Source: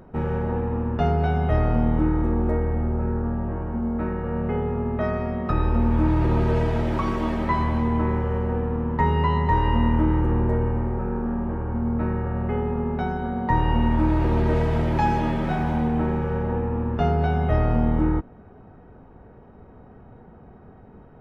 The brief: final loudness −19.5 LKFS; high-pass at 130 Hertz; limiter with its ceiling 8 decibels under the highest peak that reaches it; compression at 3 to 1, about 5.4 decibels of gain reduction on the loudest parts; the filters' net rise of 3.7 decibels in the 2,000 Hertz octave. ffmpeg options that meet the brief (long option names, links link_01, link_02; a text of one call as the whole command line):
ffmpeg -i in.wav -af "highpass=130,equalizer=frequency=2000:width_type=o:gain=4.5,acompressor=threshold=-25dB:ratio=3,volume=11.5dB,alimiter=limit=-11dB:level=0:latency=1" out.wav